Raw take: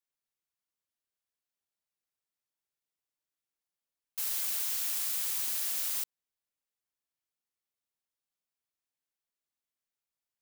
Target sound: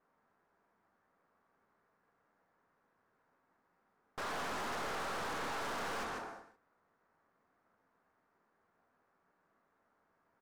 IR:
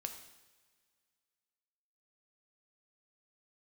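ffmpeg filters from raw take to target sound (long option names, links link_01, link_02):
-filter_complex "[0:a]acrossover=split=320|3900[link_01][link_02][link_03];[link_02]aeval=exprs='abs(val(0))':channel_layout=same[link_04];[link_01][link_04][link_03]amix=inputs=3:normalize=0[link_05];[1:a]atrim=start_sample=2205,afade=type=out:start_time=0.43:duration=0.01,atrim=end_sample=19404[link_06];[link_05][link_06]afir=irnorm=-1:irlink=0,adynamicsmooth=sensitivity=2.5:basefreq=1500,highshelf=frequency=2200:width_type=q:width=1.5:gain=-11,aecho=1:1:147:0.299,asplit=2[link_07][link_08];[link_08]highpass=frequency=720:poles=1,volume=36dB,asoftclip=type=tanh:threshold=-41.5dB[link_09];[link_07][link_09]amix=inputs=2:normalize=0,lowpass=frequency=6000:poles=1,volume=-6dB,volume=8.5dB"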